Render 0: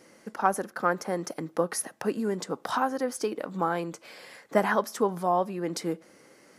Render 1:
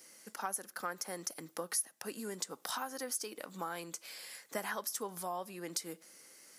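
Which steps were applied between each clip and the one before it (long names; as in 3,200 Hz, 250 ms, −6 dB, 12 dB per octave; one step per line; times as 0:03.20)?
high-pass filter 110 Hz
first-order pre-emphasis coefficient 0.9
downward compressor 2.5 to 1, threshold −43 dBFS, peak gain reduction 12.5 dB
level +6.5 dB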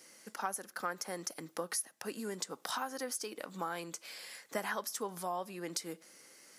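high-shelf EQ 8,700 Hz −7.5 dB
level +2 dB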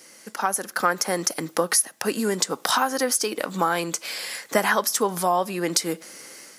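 automatic gain control gain up to 7 dB
level +9 dB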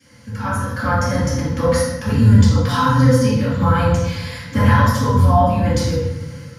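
sub-octave generator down 1 octave, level −2 dB
convolution reverb RT60 1.2 s, pre-delay 3 ms, DRR −14 dB
level −18 dB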